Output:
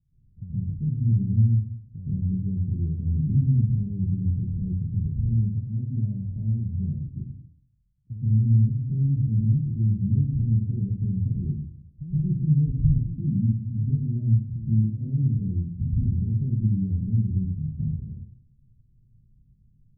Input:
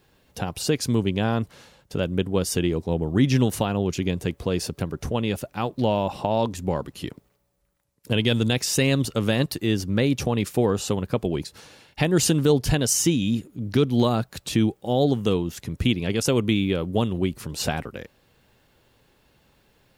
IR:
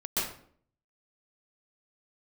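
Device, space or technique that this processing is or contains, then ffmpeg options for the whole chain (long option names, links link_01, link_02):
club heard from the street: -filter_complex "[0:a]alimiter=limit=-15dB:level=0:latency=1:release=22,lowpass=frequency=150:width=0.5412,lowpass=frequency=150:width=1.3066[link_01];[1:a]atrim=start_sample=2205[link_02];[link_01][link_02]afir=irnorm=-1:irlink=0"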